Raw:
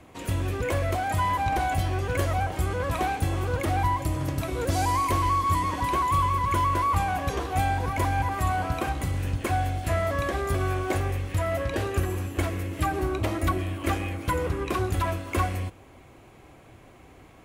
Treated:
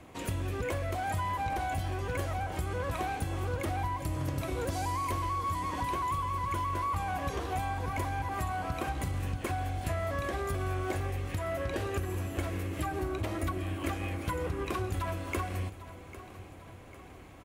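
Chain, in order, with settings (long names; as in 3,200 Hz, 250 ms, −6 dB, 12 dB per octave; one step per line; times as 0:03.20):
downward compressor, threshold −29 dBFS, peak gain reduction 10 dB
on a send: repeating echo 799 ms, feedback 52%, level −15.5 dB
on the sum: level −1 dB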